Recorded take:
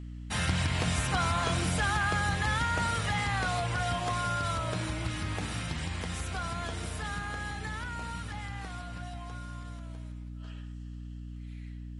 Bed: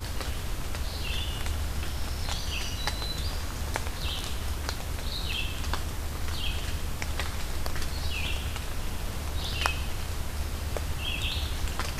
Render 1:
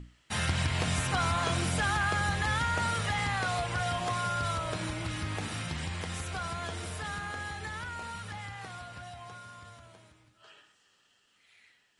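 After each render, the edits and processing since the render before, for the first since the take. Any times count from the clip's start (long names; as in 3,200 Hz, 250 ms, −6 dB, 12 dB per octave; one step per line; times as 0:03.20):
mains-hum notches 60/120/180/240/300 Hz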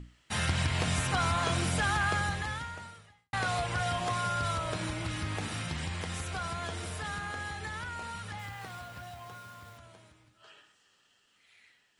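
0:02.14–0:03.33: fade out quadratic
0:08.39–0:09.78: hold until the input has moved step −52 dBFS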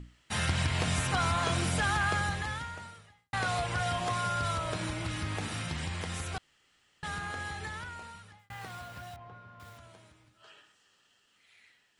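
0:06.38–0:07.03: fill with room tone
0:07.62–0:08.50: fade out
0:09.16–0:09.60: head-to-tape spacing loss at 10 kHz 37 dB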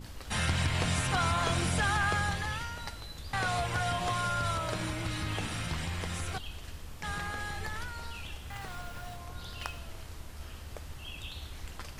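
mix in bed −12 dB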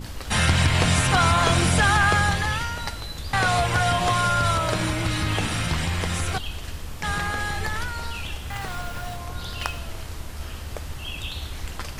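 level +10 dB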